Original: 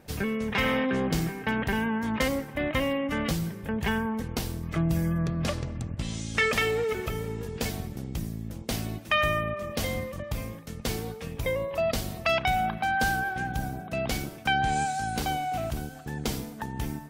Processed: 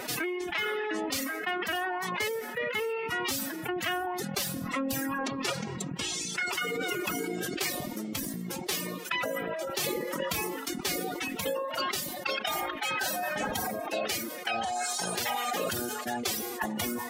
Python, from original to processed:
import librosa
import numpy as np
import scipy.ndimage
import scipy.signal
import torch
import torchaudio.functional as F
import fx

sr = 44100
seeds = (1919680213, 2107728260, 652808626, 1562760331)

y = fx.dereverb_blind(x, sr, rt60_s=1.3)
y = fx.highpass(y, sr, hz=880.0, slope=6)
y = fx.rider(y, sr, range_db=10, speed_s=0.5)
y = fx.pitch_keep_formants(y, sr, semitones=8.5)
y = fx.env_flatten(y, sr, amount_pct=70)
y = y * librosa.db_to_amplitude(-1.5)